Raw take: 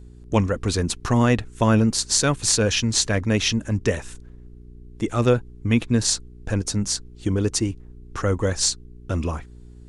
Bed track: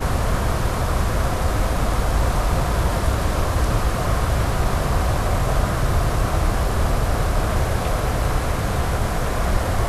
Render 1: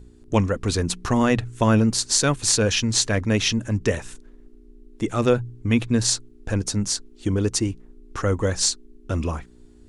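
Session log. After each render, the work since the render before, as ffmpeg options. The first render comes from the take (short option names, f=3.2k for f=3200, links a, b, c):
-af "bandreject=f=60:t=h:w=4,bandreject=f=120:t=h:w=4,bandreject=f=180:t=h:w=4"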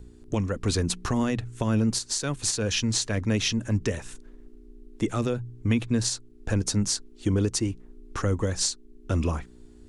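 -filter_complex "[0:a]alimiter=limit=-14.5dB:level=0:latency=1:release=423,acrossover=split=380|3000[a][b][c];[b]acompressor=threshold=-30dB:ratio=6[d];[a][d][c]amix=inputs=3:normalize=0"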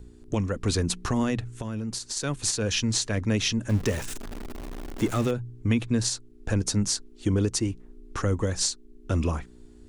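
-filter_complex "[0:a]asettb=1/sr,asplit=3[a][b][c];[a]atrim=end=1.454[d];[b]atrim=start=1.45:end=2.17,asetpts=PTS-STARTPTS,afade=t=in:d=0.004:c=qsin,afade=t=out:st=0.716:d=0.004:c=qsin,acompressor=threshold=-29dB:ratio=4:attack=3.2:release=140:knee=1:detection=peak[e];[c]atrim=start=2.166[f];[d][e]acrossfade=d=0.004:c1=hsin:c2=qsin[g];[g][f]acrossfade=d=0.004:c1=qsin:c2=hsin,asettb=1/sr,asplit=3[h][i][j];[h]atrim=end=3.694[k];[i]atrim=start=3.69:end=5.31,asetpts=PTS-STARTPTS,afade=t=in:d=0.004:c=qsin,afade=t=out:st=1.616:d=0.004:c=qsin,aeval=exprs='val(0)+0.5*0.0251*sgn(val(0))':c=same[l];[j]atrim=start=5.306[m];[k][l]acrossfade=d=0.004:c1=hsin:c2=qsin[n];[n][m]acrossfade=d=0.004:c1=qsin:c2=hsin"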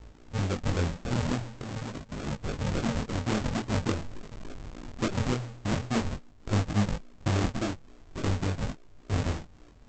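-af "aresample=16000,acrusher=samples=32:mix=1:aa=0.000001:lfo=1:lforange=32:lforate=3.5,aresample=44100,flanger=delay=19:depth=5.1:speed=0.45"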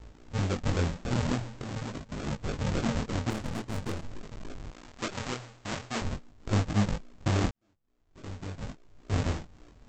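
-filter_complex "[0:a]asettb=1/sr,asplit=3[a][b][c];[a]atrim=end=3.304[d];[b]atrim=start=3.3:end=4.03,asetpts=PTS-STARTPTS,afade=t=in:d=0.004:c=qsin,afade=t=out:st=0.726:d=0.004:c=qsin,aeval=exprs='(tanh(28.2*val(0)+0.8)-tanh(0.8))/28.2':c=same[e];[c]atrim=start=4.026[f];[d][e]acrossfade=d=0.004:c1=hsin:c2=qsin[g];[g][f]acrossfade=d=0.004:c1=qsin:c2=hsin,asettb=1/sr,asplit=3[h][i][j];[h]atrim=end=4.724[k];[i]atrim=start=4.72:end=6.02,asetpts=PTS-STARTPTS,afade=t=in:d=0.004:c=qsin,afade=t=out:st=1.296:d=0.004:c=qsin,lowshelf=f=450:g=-11.5[l];[j]atrim=start=6.016[m];[k][l]acrossfade=d=0.004:c1=hsin:c2=qsin[n];[n][m]acrossfade=d=0.004:c1=qsin:c2=hsin,asplit=2[o][p];[o]atrim=end=7.51,asetpts=PTS-STARTPTS,afade=t=out:st=7.506:d=0.004:c=hsin[q];[p]atrim=start=7.51,asetpts=PTS-STARTPTS,afade=t=in:d=1.64:c=qua[r];[q][r]concat=n=2:v=0:a=1"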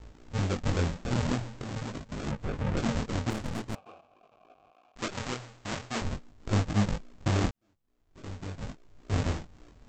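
-filter_complex "[0:a]asettb=1/sr,asplit=3[a][b][c];[a]atrim=end=2.314[d];[b]atrim=start=2.31:end=2.77,asetpts=PTS-STARTPTS,afade=t=in:d=0.004:c=qsin,afade=t=out:st=0.456:d=0.004:c=qsin,acrossover=split=2800[e][f];[f]acompressor=threshold=-55dB:ratio=4:attack=1:release=60[g];[e][g]amix=inputs=2:normalize=0[h];[c]atrim=start=2.766[i];[d][h]acrossfade=d=0.004:c1=hsin:c2=qsin[j];[j][i]acrossfade=d=0.004:c1=qsin:c2=hsin,asettb=1/sr,asplit=3[k][l][m];[k]atrim=end=3.754[n];[l]atrim=start=3.75:end=4.96,asetpts=PTS-STARTPTS,afade=t=in:d=0.004:c=qsin,afade=t=out:st=1.206:d=0.004:c=qsin,asplit=3[o][p][q];[o]bandpass=f=730:t=q:w=8,volume=0dB[r];[p]bandpass=f=1.09k:t=q:w=8,volume=-6dB[s];[q]bandpass=f=2.44k:t=q:w=8,volume=-9dB[t];[r][s][t]amix=inputs=3:normalize=0[u];[m]atrim=start=4.956[v];[n][u]acrossfade=d=0.004:c1=hsin:c2=qsin[w];[w][v]acrossfade=d=0.004:c1=qsin:c2=hsin"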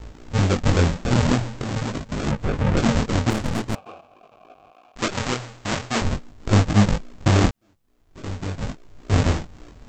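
-af "volume=10dB"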